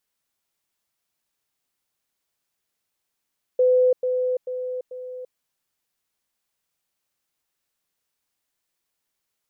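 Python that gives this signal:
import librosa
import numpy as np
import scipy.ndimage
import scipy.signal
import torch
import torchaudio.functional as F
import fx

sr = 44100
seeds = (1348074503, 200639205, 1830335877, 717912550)

y = fx.level_ladder(sr, hz=505.0, from_db=-14.0, step_db=-6.0, steps=4, dwell_s=0.34, gap_s=0.1)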